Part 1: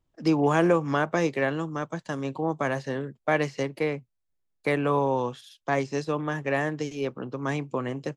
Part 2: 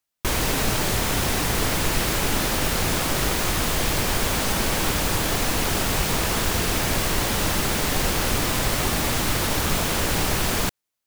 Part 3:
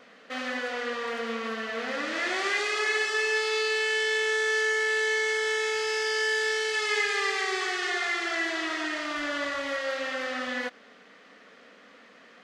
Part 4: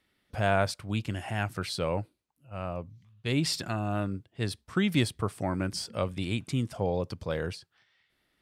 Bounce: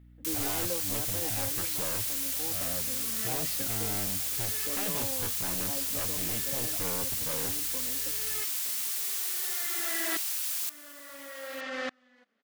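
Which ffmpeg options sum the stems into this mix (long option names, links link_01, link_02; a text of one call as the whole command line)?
ffmpeg -i stem1.wav -i stem2.wav -i stem3.wav -i stem4.wav -filter_complex "[0:a]lowpass=1100,aecho=1:1:3.8:0.84,volume=-18.5dB,asplit=3[link_01][link_02][link_03];[link_02]volume=-16dB[link_04];[1:a]highpass=frequency=960:poles=1,aderivative,volume=-6dB,asplit=2[link_05][link_06];[link_06]volume=-17dB[link_07];[2:a]equalizer=frequency=220:width_type=o:width=0.34:gain=9,alimiter=level_in=0.5dB:limit=-24dB:level=0:latency=1:release=22,volume=-0.5dB,aeval=exprs='val(0)*pow(10,-35*if(lt(mod(-0.58*n/s,1),2*abs(-0.58)/1000),1-mod(-0.58*n/s,1)/(2*abs(-0.58)/1000),(mod(-0.58*n/s,1)-2*abs(-0.58)/1000)/(1-2*abs(-0.58)/1000))/20)':channel_layout=same,adelay=1550,volume=0.5dB[link_08];[3:a]lowpass=3000,aeval=exprs='val(0)+0.00355*(sin(2*PI*60*n/s)+sin(2*PI*2*60*n/s)/2+sin(2*PI*3*60*n/s)/3+sin(2*PI*4*60*n/s)/4+sin(2*PI*5*60*n/s)/5)':channel_layout=same,aeval=exprs='0.0376*(abs(mod(val(0)/0.0376+3,4)-2)-1)':channel_layout=same,volume=-4dB[link_09];[link_03]apad=whole_len=616521[link_10];[link_08][link_10]sidechaincompress=threshold=-56dB:ratio=8:attack=16:release=866[link_11];[link_04][link_07]amix=inputs=2:normalize=0,aecho=0:1:913:1[link_12];[link_01][link_05][link_11][link_09][link_12]amix=inputs=5:normalize=0" out.wav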